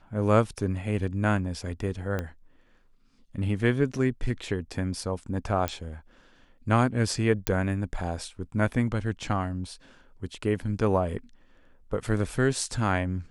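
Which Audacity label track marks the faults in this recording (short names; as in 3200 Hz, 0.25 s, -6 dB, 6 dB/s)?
2.190000	2.190000	pop -17 dBFS
5.680000	5.680000	pop -12 dBFS
7.470000	7.470000	pop -7 dBFS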